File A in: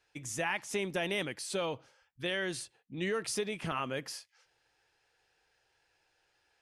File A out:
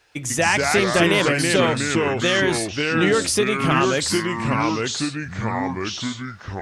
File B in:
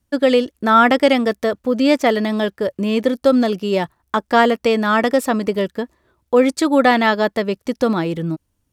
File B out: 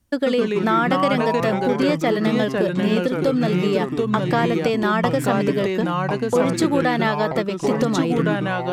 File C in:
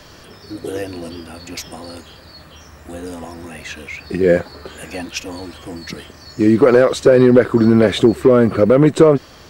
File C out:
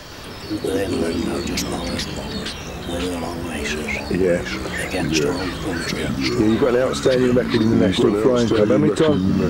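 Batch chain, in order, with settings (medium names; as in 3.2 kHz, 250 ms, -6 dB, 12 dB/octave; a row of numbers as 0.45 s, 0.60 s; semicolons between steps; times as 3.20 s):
compression 3:1, threshold -23 dBFS; ever faster or slower copies 117 ms, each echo -3 st, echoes 3; normalise loudness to -20 LUFS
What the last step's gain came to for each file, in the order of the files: +14.0 dB, +2.5 dB, +5.0 dB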